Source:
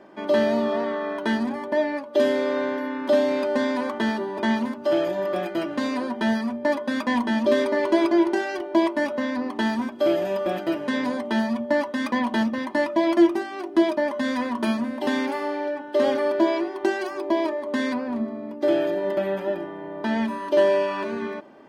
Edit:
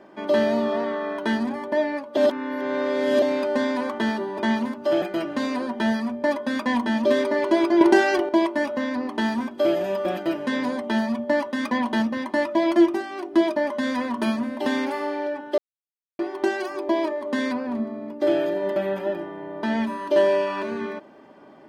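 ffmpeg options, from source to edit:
ffmpeg -i in.wav -filter_complex "[0:a]asplit=8[link_01][link_02][link_03][link_04][link_05][link_06][link_07][link_08];[link_01]atrim=end=2.172[link_09];[link_02]atrim=start=2.168:end=3.222,asetpts=PTS-STARTPTS,areverse[link_10];[link_03]atrim=start=3.218:end=5.022[link_11];[link_04]atrim=start=5.428:end=8.222[link_12];[link_05]atrim=start=8.218:end=8.702,asetpts=PTS-STARTPTS,volume=8dB[link_13];[link_06]atrim=start=8.698:end=15.99,asetpts=PTS-STARTPTS,afade=type=out:start_time=7.288:duration=0.004:curve=hsin[link_14];[link_07]atrim=start=15.99:end=16.6,asetpts=PTS-STARTPTS,volume=0[link_15];[link_08]atrim=start=16.6,asetpts=PTS-STARTPTS,afade=type=in:duration=0.004:curve=hsin[link_16];[link_09][link_10]acrossfade=duration=0.004:curve1=hsin:curve2=hsin[link_17];[link_17][link_11]acrossfade=duration=0.004:curve1=hsin:curve2=hsin[link_18];[link_18][link_12]acrossfade=duration=0.004:curve1=hsin:curve2=hsin[link_19];[link_19][link_13]acrossfade=duration=0.004:curve1=hsin:curve2=hsin[link_20];[link_14][link_15][link_16]concat=n=3:v=0:a=1[link_21];[link_20][link_21]acrossfade=duration=0.004:curve1=hsin:curve2=hsin" out.wav

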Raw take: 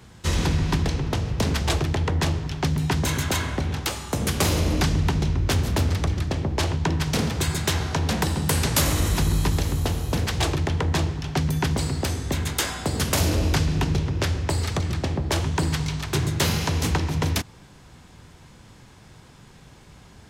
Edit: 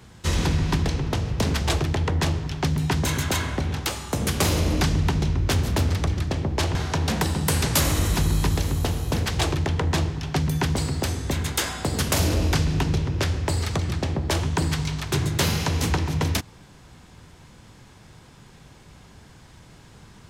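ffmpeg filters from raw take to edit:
ffmpeg -i in.wav -filter_complex "[0:a]asplit=2[link_01][link_02];[link_01]atrim=end=6.752[link_03];[link_02]atrim=start=7.758[link_04];[link_03][link_04]acrossfade=duration=0.004:curve1=hsin:curve2=hsin" out.wav

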